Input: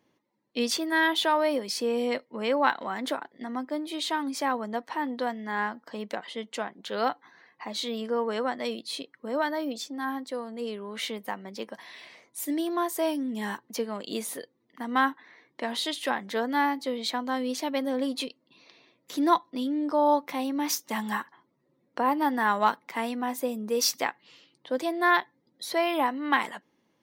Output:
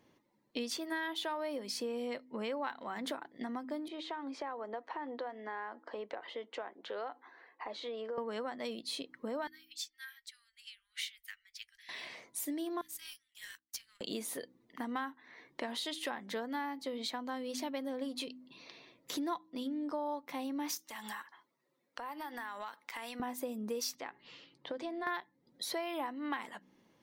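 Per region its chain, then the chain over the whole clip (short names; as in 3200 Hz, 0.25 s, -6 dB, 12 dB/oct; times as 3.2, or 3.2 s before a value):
3.88–8.18 HPF 340 Hz 24 dB/oct + compressor 2:1, threshold -36 dBFS + tape spacing loss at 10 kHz 28 dB
9.47–11.89 inverse Chebyshev band-stop 180–570 Hz, stop band 70 dB + bell 1000 Hz -15 dB 0.36 oct + upward expander, over -55 dBFS
12.81–14.01 Bessel high-pass 2800 Hz, order 8 + power-law curve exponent 1.4
20.77–23.2 HPF 1500 Hz 6 dB/oct + compressor 5:1, threshold -41 dBFS
23.95–25.07 compressor 2:1, threshold -37 dBFS + air absorption 100 m + notches 50/100/150/200/250/300/350/400 Hz
whole clip: low shelf 68 Hz +10.5 dB; de-hum 63.35 Hz, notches 5; compressor 4:1, threshold -40 dBFS; gain +2 dB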